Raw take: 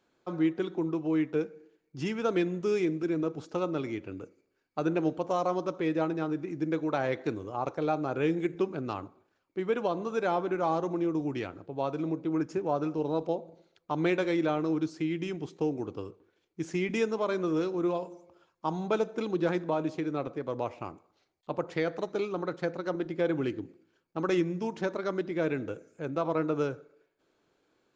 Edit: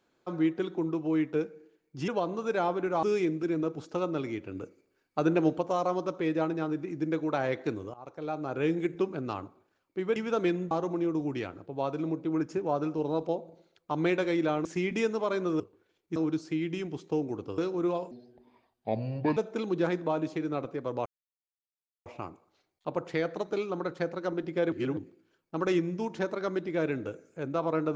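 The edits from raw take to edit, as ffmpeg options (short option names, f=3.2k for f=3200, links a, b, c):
-filter_complex "[0:a]asplit=17[a][b][c][d][e][f][g][h][i][j][k][l][m][n][o][p][q];[a]atrim=end=2.082[r];[b]atrim=start=9.758:end=10.712[s];[c]atrim=start=2.628:end=4.152[t];[d]atrim=start=4.148:end=5.212,asetpts=PTS-STARTPTS,volume=3dB[u];[e]atrim=start=5.208:end=7.54,asetpts=PTS-STARTPTS,afade=t=out:st=2.328:d=0.004:c=hsin:silence=0.0841395[v];[f]atrim=start=7.54:end=9.762,asetpts=PTS-STARTPTS,afade=t=in:d=0.75:silence=0.0841395[w];[g]atrim=start=2.078:end=2.632[x];[h]atrim=start=10.708:end=14.652[y];[i]atrim=start=16.628:end=17.582[z];[j]atrim=start=16.068:end=16.632[aa];[k]atrim=start=14.648:end=16.072[ab];[l]atrim=start=17.578:end=18.114[ac];[m]atrim=start=18.11:end=18.99,asetpts=PTS-STARTPTS,asetrate=30870,aresample=44100[ad];[n]atrim=start=18.986:end=20.68,asetpts=PTS-STARTPTS,afade=t=out:st=1.69:d=0.004:c=hsin,apad=pad_dur=1[ae];[o]atrim=start=20.68:end=23.342,asetpts=PTS-STARTPTS,afade=t=in:d=0.004:c=hsin[af];[p]atrim=start=23.338:end=23.592,asetpts=PTS-STARTPTS,areverse[ag];[q]atrim=start=23.588[ah];[r][s]acrossfade=d=0.004:c1=hsin:c2=hsin[ai];[ai][t]acrossfade=d=0.004:c1=hsin:c2=hsin[aj];[aj][u]acrossfade=d=0.004:c1=hsin:c2=hsin[ak];[v][w]concat=n=2:v=0:a=1[al];[ak][al]acrossfade=d=0.004:c1=hsin:c2=hsin[am];[am][x]acrossfade=d=0.004:c1=hsin:c2=hsin[an];[an][y]acrossfade=d=0.004:c1=hsin:c2=hsin[ao];[ao][z]acrossfade=d=0.004:c1=hsin:c2=hsin[ap];[ap][aa]acrossfade=d=0.004:c1=hsin:c2=hsin[aq];[aq][ab]acrossfade=d=0.004:c1=hsin:c2=hsin[ar];[ar][ac]acrossfade=d=0.004:c1=hsin:c2=hsin[as];[as][ad]acrossfade=d=0.004:c1=hsin:c2=hsin[at];[ae][af]concat=n=2:v=0:a=1[au];[at][au]acrossfade=d=0.004:c1=hsin:c2=hsin[av];[av][ag]acrossfade=d=0.004:c1=hsin:c2=hsin[aw];[aw][ah]acrossfade=d=0.004:c1=hsin:c2=hsin"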